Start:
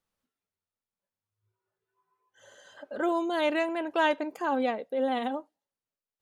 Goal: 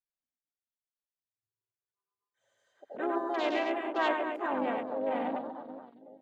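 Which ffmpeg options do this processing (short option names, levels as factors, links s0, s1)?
-filter_complex "[0:a]aecho=1:1:100|240|436|710.4|1095:0.631|0.398|0.251|0.158|0.1,asplit=3[s0][s1][s2];[s1]asetrate=35002,aresample=44100,atempo=1.25992,volume=0.2[s3];[s2]asetrate=52444,aresample=44100,atempo=0.840896,volume=0.501[s4];[s0][s3][s4]amix=inputs=3:normalize=0,afwtdn=0.0158,volume=0.501"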